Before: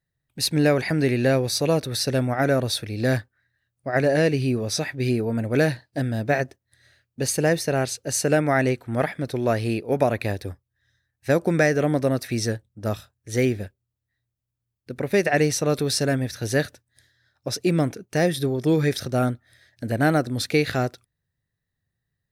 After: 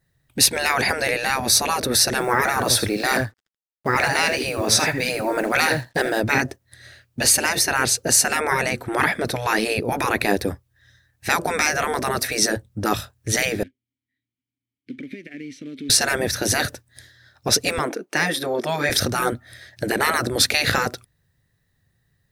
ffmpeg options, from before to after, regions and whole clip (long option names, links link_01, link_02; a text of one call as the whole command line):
ffmpeg -i in.wav -filter_complex "[0:a]asettb=1/sr,asplit=3[link_01][link_02][link_03];[link_01]atrim=end=2.204[link_04];[link_02]atrim=start=2.2:end=6.2,asetpts=PTS-STARTPTS,afade=type=in:duration=0.004:curve=qsin,afade=type=out:start_time=3.996:duration=0.004:curve=qsin,equalizer=frequency=1200:width_type=o:width=1.8:gain=3.5,acrusher=bits=8:mix=0:aa=0.5,aecho=1:1:81:0.168,atrim=end_sample=176400[link_05];[link_03]atrim=start=6.196[link_06];[link_04][link_05]acrossfade=duration=0.004:curve1=hsin:curve2=qsin[link_07];[link_07][link_06]acrossfade=duration=0.004:curve1=qsin:curve2=hsin,asettb=1/sr,asplit=3[link_08][link_09][link_10];[link_08]atrim=end=13.634[link_11];[link_09]atrim=start=13.63:end=15.9,asetpts=PTS-STARTPTS,afade=type=in:duration=0.004:curve=qsin,afade=type=out:start_time=2.266:duration=0.004:curve=qsin,acrusher=bits=4:mode=log:mix=0:aa=0.000001,acompressor=threshold=-31dB:ratio=12:attack=3.2:release=140:knee=1:detection=peak,asplit=3[link_12][link_13][link_14];[link_12]bandpass=frequency=270:width_type=q:width=8,volume=0dB[link_15];[link_13]bandpass=frequency=2290:width_type=q:width=8,volume=-6dB[link_16];[link_14]bandpass=frequency=3010:width_type=q:width=8,volume=-9dB[link_17];[link_15][link_16][link_17]amix=inputs=3:normalize=0[link_18];[link_10]atrim=start=15.896[link_19];[link_11][link_18]acrossfade=duration=0.004:curve1=hsin:curve2=qsin[link_20];[link_20][link_19]acrossfade=duration=0.004:curve1=qsin:curve2=hsin,asettb=1/sr,asplit=3[link_21][link_22][link_23];[link_21]atrim=end=17.784[link_24];[link_22]atrim=start=17.78:end=18.9,asetpts=PTS-STARTPTS,afade=type=in:duration=0.004:curve=qsin,afade=type=out:start_time=1.116:duration=0.004:curve=qsin,highpass=frequency=290:width=0.5412,highpass=frequency=290:width=1.3066,highshelf=frequency=3000:gain=-9,bandreject=frequency=400:width=6.2[link_25];[link_23]atrim=start=18.896[link_26];[link_24][link_25]acrossfade=duration=0.004:curve1=hsin:curve2=qsin[link_27];[link_27][link_26]acrossfade=duration=0.004:curve1=qsin:curve2=hsin,afftfilt=real='re*lt(hypot(re,im),0.2)':imag='im*lt(hypot(re,im),0.2)':win_size=1024:overlap=0.75,adynamicequalizer=threshold=0.00562:dfrequency=3000:dqfactor=0.92:tfrequency=3000:tqfactor=0.92:attack=5:release=100:ratio=0.375:range=3:mode=cutabove:tftype=bell,alimiter=level_in=16dB:limit=-1dB:release=50:level=0:latency=1,volume=-3dB" out.wav